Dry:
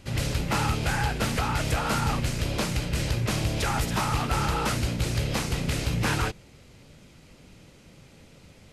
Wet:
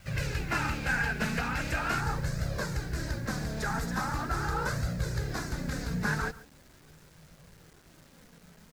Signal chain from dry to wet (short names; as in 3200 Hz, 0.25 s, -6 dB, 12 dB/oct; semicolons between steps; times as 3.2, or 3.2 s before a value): bell 2600 Hz +5.5 dB 0.58 oct, from 2.01 s -9 dB; flange 0.41 Hz, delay 1.4 ms, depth 3.4 ms, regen +17%; thirty-one-band EQ 160 Hz +10 dB, 1600 Hz +11 dB, 3150 Hz -8 dB, 10000 Hz -8 dB; echo 0.139 s -18.5 dB; vibrato 5.9 Hz 39 cents; bit-crush 9-bit; gain -3 dB